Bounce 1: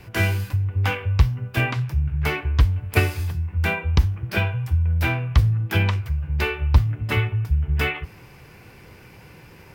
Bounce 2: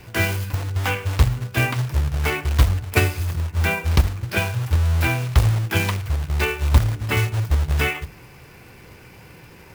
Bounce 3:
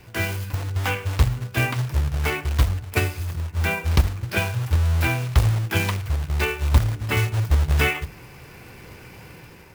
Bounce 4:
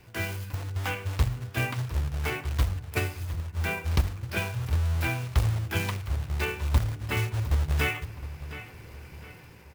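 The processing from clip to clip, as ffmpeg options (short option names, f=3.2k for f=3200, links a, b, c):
-af "acrusher=bits=3:mode=log:mix=0:aa=0.000001,bandreject=f=50:t=h:w=6,bandreject=f=100:t=h:w=6,bandreject=f=150:t=h:w=6,bandreject=f=200:t=h:w=6,volume=1.5dB"
-af "dynaudnorm=f=220:g=5:m=6.5dB,volume=-4.5dB"
-filter_complex "[0:a]asplit=2[a][b];[b]adelay=714,lowpass=f=4.4k:p=1,volume=-13.5dB,asplit=2[c][d];[d]adelay=714,lowpass=f=4.4k:p=1,volume=0.41,asplit=2[e][f];[f]adelay=714,lowpass=f=4.4k:p=1,volume=0.41,asplit=2[g][h];[h]adelay=714,lowpass=f=4.4k:p=1,volume=0.41[i];[a][c][e][g][i]amix=inputs=5:normalize=0,volume=-6.5dB"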